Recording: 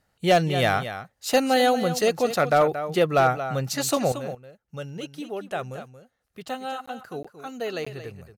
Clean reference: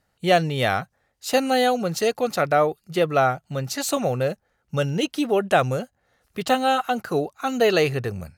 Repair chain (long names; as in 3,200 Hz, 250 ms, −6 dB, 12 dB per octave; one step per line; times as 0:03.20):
clipped peaks rebuilt −11 dBFS
repair the gap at 0:06.86/0:07.23/0:07.85, 15 ms
echo removal 228 ms −11.5 dB
level 0 dB, from 0:04.12 +12 dB